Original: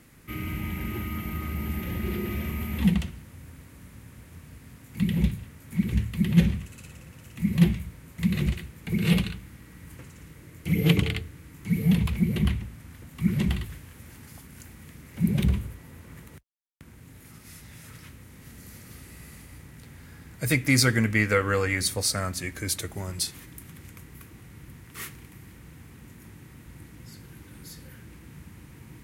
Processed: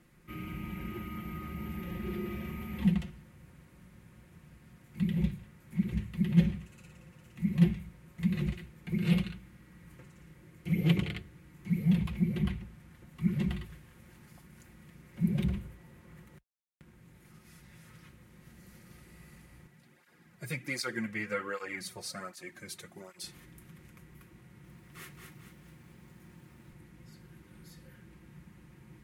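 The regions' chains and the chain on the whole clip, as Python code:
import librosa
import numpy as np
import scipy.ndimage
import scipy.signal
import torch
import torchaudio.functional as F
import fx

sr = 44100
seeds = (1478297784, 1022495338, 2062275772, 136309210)

y = fx.chain(x, sr, fx.highpass(hz=240.0, slope=6),
    fx.flanger_cancel(hz=1.3, depth_ms=4.0), at=(19.67, 23.24))
y = fx.chain(y, sr, fx.highpass(hz=61.0, slope=24),
    fx.echo_crushed(ms=219, feedback_pct=55, bits=9, wet_db=-4), at=(24.42, 26.73))
y = fx.high_shelf(y, sr, hz=4300.0, db=-8.0)
y = y + 0.56 * np.pad(y, (int(5.6 * sr / 1000.0), 0))[:len(y)]
y = y * librosa.db_to_amplitude(-8.0)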